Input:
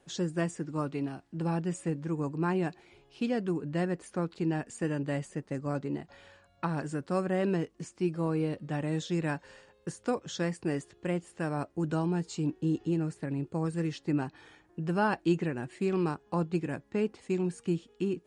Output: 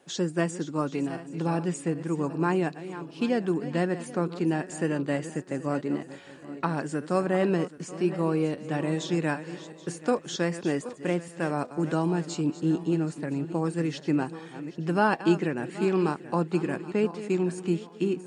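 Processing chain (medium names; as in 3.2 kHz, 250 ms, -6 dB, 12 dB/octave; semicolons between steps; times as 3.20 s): backward echo that repeats 389 ms, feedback 55%, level -13 dB; high-pass 170 Hz 12 dB/octave; trim +5 dB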